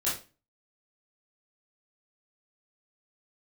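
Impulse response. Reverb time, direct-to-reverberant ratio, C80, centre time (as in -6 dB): 0.30 s, -9.0 dB, 12.5 dB, 36 ms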